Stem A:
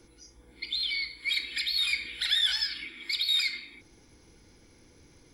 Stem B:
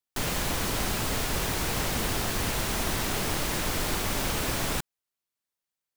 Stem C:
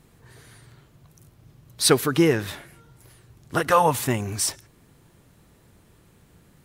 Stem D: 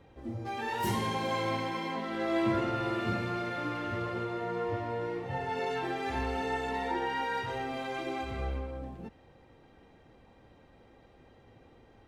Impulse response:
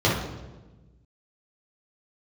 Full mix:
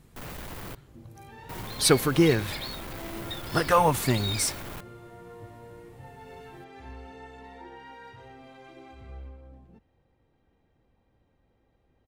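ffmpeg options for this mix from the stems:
-filter_complex "[0:a]adelay=950,volume=0.398[s0];[1:a]equalizer=f=6400:t=o:w=1.9:g=-11,volume=53.1,asoftclip=hard,volume=0.0188,volume=0.668,asplit=3[s1][s2][s3];[s1]atrim=end=0.75,asetpts=PTS-STARTPTS,afade=t=out:st=0.746:d=0.004:c=hsin[s4];[s2]atrim=start=0.75:end=1.49,asetpts=PTS-STARTPTS,volume=0[s5];[s3]atrim=start=1.49,asetpts=PTS-STARTPTS,afade=t=in:d=0.004:c=hsin[s6];[s4][s5][s6]concat=n=3:v=0:a=1[s7];[2:a]lowshelf=f=150:g=6,volume=0.708,asplit=2[s8][s9];[3:a]lowshelf=f=160:g=8.5,adelay=700,volume=0.2[s10];[s9]apad=whole_len=277241[s11];[s0][s11]sidechaingate=range=0.0224:threshold=0.00398:ratio=16:detection=peak[s12];[s12][s7][s8][s10]amix=inputs=4:normalize=0"

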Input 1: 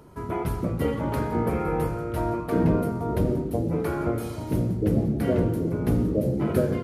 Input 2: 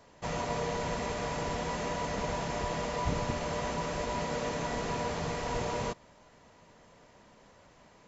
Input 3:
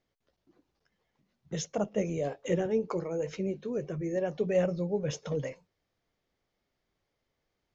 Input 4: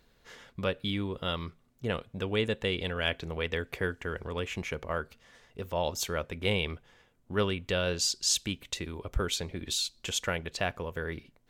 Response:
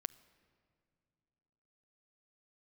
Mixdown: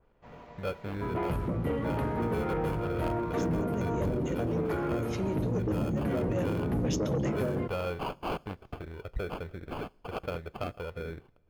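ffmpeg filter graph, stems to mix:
-filter_complex "[0:a]adelay=850,volume=0.891,asplit=2[s0][s1];[s1]volume=0.316[s2];[1:a]volume=0.15[s3];[2:a]adelay=1800,volume=1.19[s4];[3:a]equalizer=f=250:t=o:w=1:g=-9,equalizer=f=500:t=o:w=1:g=4,equalizer=f=1000:t=o:w=1:g=-6,equalizer=f=4000:t=o:w=1:g=-5,acrusher=samples=23:mix=1:aa=0.000001,volume=0.794,asplit=3[s5][s6][s7];[s6]volume=0.251[s8];[s7]apad=whole_len=420899[s9];[s4][s9]sidechaincompress=threshold=0.00501:ratio=8:attack=11:release=151[s10];[s0][s3][s5]amix=inputs=3:normalize=0,lowpass=2600,acompressor=threshold=0.0447:ratio=6,volume=1[s11];[4:a]atrim=start_sample=2205[s12];[s2][s8]amix=inputs=2:normalize=0[s13];[s13][s12]afir=irnorm=-1:irlink=0[s14];[s10][s11][s14]amix=inputs=3:normalize=0,asoftclip=type=tanh:threshold=0.0668,adynamicequalizer=threshold=0.00178:dfrequency=2400:dqfactor=0.7:tfrequency=2400:tqfactor=0.7:attack=5:release=100:ratio=0.375:range=2:mode=boostabove:tftype=highshelf"

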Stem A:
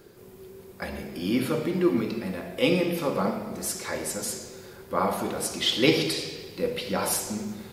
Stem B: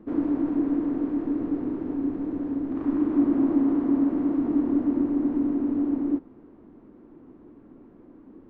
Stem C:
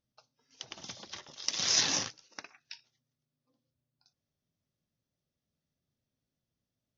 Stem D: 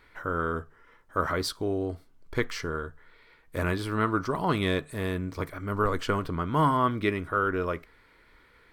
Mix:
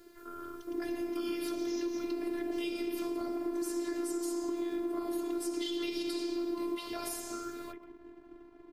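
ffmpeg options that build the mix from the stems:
-filter_complex "[0:a]volume=0.841[s0];[1:a]aeval=exprs='sgn(val(0))*max(abs(val(0))-0.00188,0)':c=same,dynaudnorm=f=680:g=3:m=3.55,adelay=600,volume=0.447[s1];[2:a]volume=0.168[s2];[3:a]volume=0.224,asplit=2[s3][s4];[s4]volume=0.237,aecho=0:1:133:1[s5];[s0][s1][s2][s3][s5]amix=inputs=5:normalize=0,acrossover=split=250|500|3200[s6][s7][s8][s9];[s6]acompressor=threshold=0.0126:ratio=4[s10];[s7]acompressor=threshold=0.0282:ratio=4[s11];[s8]acompressor=threshold=0.0112:ratio=4[s12];[s9]acompressor=threshold=0.02:ratio=4[s13];[s10][s11][s12][s13]amix=inputs=4:normalize=0,afftfilt=real='hypot(re,im)*cos(PI*b)':imag='0':win_size=512:overlap=0.75,acompressor=threshold=0.0282:ratio=6"

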